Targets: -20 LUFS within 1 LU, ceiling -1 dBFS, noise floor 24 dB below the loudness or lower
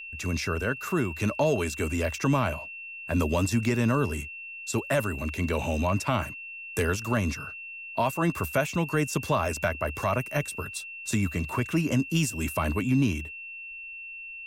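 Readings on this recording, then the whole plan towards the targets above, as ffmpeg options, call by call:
steady tone 2.7 kHz; tone level -38 dBFS; loudness -28.5 LUFS; peak level -14.0 dBFS; loudness target -20.0 LUFS
-> -af "bandreject=f=2700:w=30"
-af "volume=2.66"

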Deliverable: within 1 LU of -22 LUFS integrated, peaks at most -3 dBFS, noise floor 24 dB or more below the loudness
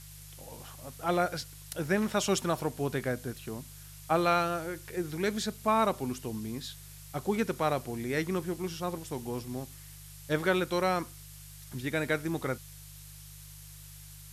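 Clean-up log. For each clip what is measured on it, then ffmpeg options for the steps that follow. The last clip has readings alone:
hum 50 Hz; highest harmonic 150 Hz; hum level -48 dBFS; noise floor -49 dBFS; noise floor target -56 dBFS; loudness -32.0 LUFS; peak level -13.5 dBFS; loudness target -22.0 LUFS
-> -af "bandreject=f=50:t=h:w=4,bandreject=f=100:t=h:w=4,bandreject=f=150:t=h:w=4"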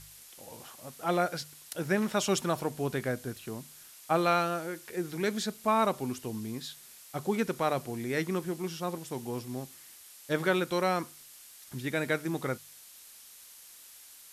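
hum not found; noise floor -52 dBFS; noise floor target -56 dBFS
-> -af "afftdn=nr=6:nf=-52"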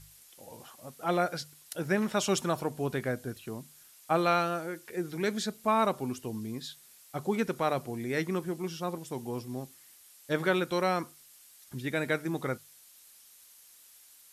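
noise floor -57 dBFS; loudness -32.0 LUFS; peak level -13.5 dBFS; loudness target -22.0 LUFS
-> -af "volume=3.16"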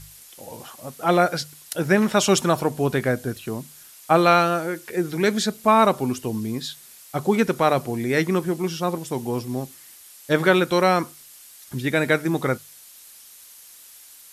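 loudness -22.0 LUFS; peak level -3.5 dBFS; noise floor -47 dBFS

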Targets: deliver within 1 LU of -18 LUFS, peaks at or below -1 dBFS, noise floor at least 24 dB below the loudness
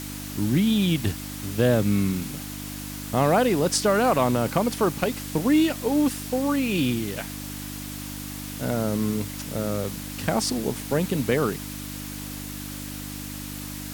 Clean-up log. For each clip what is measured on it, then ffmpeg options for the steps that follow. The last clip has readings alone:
hum 50 Hz; highest harmonic 300 Hz; hum level -33 dBFS; noise floor -35 dBFS; noise floor target -50 dBFS; loudness -25.5 LUFS; peak level -8.0 dBFS; loudness target -18.0 LUFS
-> -af "bandreject=f=50:t=h:w=4,bandreject=f=100:t=h:w=4,bandreject=f=150:t=h:w=4,bandreject=f=200:t=h:w=4,bandreject=f=250:t=h:w=4,bandreject=f=300:t=h:w=4"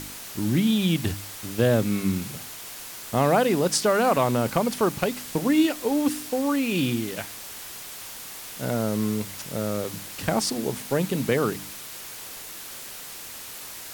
hum not found; noise floor -39 dBFS; noise floor target -50 dBFS
-> -af "afftdn=nr=11:nf=-39"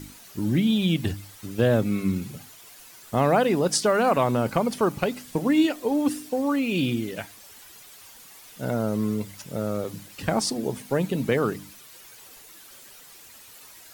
noise floor -48 dBFS; noise floor target -49 dBFS
-> -af "afftdn=nr=6:nf=-48"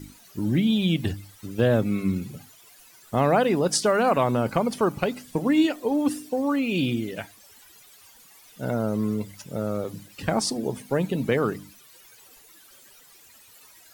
noise floor -53 dBFS; loudness -25.0 LUFS; peak level -8.5 dBFS; loudness target -18.0 LUFS
-> -af "volume=2.24"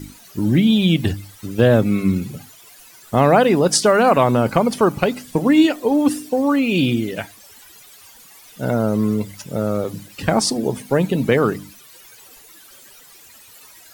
loudness -18.0 LUFS; peak level -1.5 dBFS; noise floor -46 dBFS

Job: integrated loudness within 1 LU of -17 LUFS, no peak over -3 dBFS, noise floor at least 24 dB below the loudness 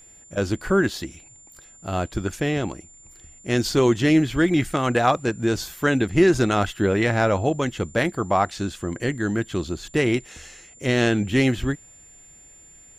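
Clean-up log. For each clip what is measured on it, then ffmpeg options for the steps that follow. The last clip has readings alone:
steady tone 7.2 kHz; tone level -47 dBFS; loudness -22.5 LUFS; peak level -5.5 dBFS; loudness target -17.0 LUFS
-> -af "bandreject=f=7200:w=30"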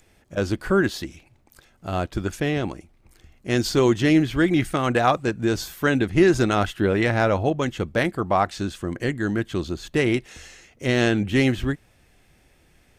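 steady tone not found; loudness -22.5 LUFS; peak level -5.5 dBFS; loudness target -17.0 LUFS
-> -af "volume=1.88,alimiter=limit=0.708:level=0:latency=1"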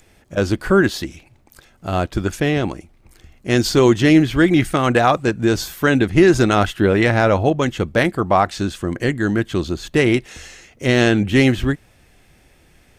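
loudness -17.5 LUFS; peak level -3.0 dBFS; noise floor -54 dBFS

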